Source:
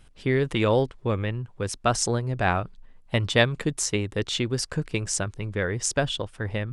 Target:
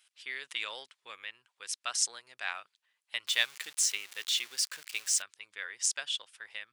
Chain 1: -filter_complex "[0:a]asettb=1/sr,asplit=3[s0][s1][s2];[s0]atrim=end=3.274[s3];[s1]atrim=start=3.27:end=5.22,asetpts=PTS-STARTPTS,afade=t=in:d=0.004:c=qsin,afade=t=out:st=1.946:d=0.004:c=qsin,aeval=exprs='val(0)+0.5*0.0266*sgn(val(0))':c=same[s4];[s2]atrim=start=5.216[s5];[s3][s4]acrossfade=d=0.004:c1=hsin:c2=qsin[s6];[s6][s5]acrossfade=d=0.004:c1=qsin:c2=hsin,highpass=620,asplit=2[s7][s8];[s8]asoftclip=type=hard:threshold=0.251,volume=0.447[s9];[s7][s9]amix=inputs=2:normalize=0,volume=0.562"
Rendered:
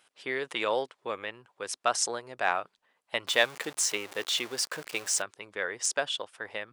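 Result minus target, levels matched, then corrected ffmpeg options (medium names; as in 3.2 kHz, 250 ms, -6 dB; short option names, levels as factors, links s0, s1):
500 Hz band +19.0 dB
-filter_complex "[0:a]asettb=1/sr,asplit=3[s0][s1][s2];[s0]atrim=end=3.274[s3];[s1]atrim=start=3.27:end=5.22,asetpts=PTS-STARTPTS,afade=t=in:d=0.004:c=qsin,afade=t=out:st=1.946:d=0.004:c=qsin,aeval=exprs='val(0)+0.5*0.0266*sgn(val(0))':c=same[s4];[s2]atrim=start=5.216[s5];[s3][s4]acrossfade=d=0.004:c1=hsin:c2=qsin[s6];[s6][s5]acrossfade=d=0.004:c1=qsin:c2=hsin,highpass=2300,asplit=2[s7][s8];[s8]asoftclip=type=hard:threshold=0.251,volume=0.447[s9];[s7][s9]amix=inputs=2:normalize=0,volume=0.562"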